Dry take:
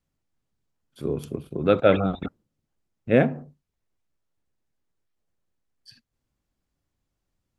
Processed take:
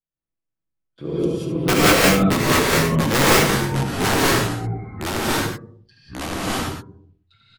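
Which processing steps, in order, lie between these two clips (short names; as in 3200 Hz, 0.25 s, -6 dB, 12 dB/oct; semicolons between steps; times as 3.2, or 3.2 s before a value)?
low-pass opened by the level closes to 2500 Hz, open at -19.5 dBFS; gate with hold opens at -50 dBFS; high shelf 3700 Hz +3 dB; notches 50/100/150/200 Hz; comb 6.1 ms, depth 59%; in parallel at -1.5 dB: compressor 16:1, threshold -29 dBFS, peak gain reduction 19 dB; on the sum: wrapped overs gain 9.5 dB; on a send: echo 72 ms -8 dB; on the sum: non-linear reverb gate 0.22 s rising, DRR -7.5 dB; echoes that change speed 0.305 s, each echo -3 st, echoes 3; gain -5 dB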